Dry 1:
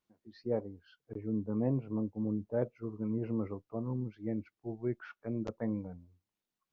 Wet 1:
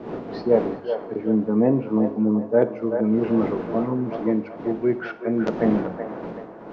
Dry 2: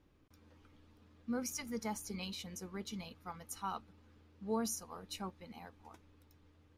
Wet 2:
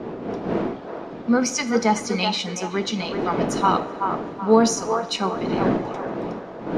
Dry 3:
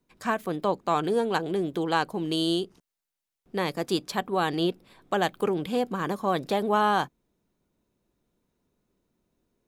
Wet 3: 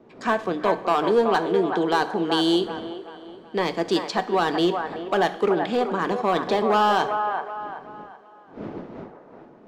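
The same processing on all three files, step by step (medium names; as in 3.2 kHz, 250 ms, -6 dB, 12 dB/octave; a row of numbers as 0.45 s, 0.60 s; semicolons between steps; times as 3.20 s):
wind noise 320 Hz -46 dBFS; low-pass 9.5 kHz 12 dB/octave; three-band isolator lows -20 dB, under 170 Hz, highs -23 dB, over 6.9 kHz; hum notches 50/100/150 Hz; in parallel at -5.5 dB: wavefolder -21 dBFS; on the sum: feedback echo behind a band-pass 379 ms, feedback 37%, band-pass 950 Hz, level -5 dB; two-slope reverb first 0.6 s, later 4.2 s, from -22 dB, DRR 10 dB; normalise loudness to -23 LUFS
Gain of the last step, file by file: +11.5 dB, +16.5 dB, +1.5 dB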